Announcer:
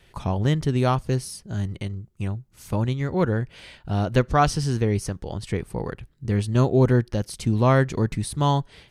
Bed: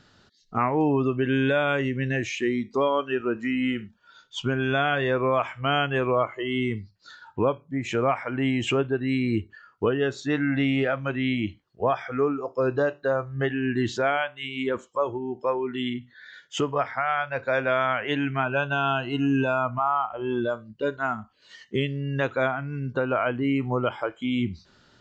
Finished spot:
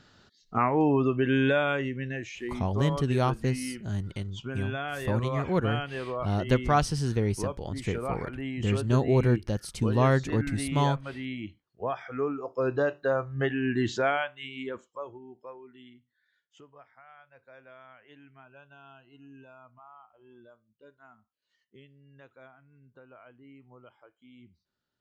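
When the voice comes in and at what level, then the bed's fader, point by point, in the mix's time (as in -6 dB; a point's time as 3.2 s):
2.35 s, -4.5 dB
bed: 1.5 s -1 dB
2.34 s -10.5 dB
11.44 s -10.5 dB
12.93 s -2 dB
14.08 s -2 dB
16.25 s -28 dB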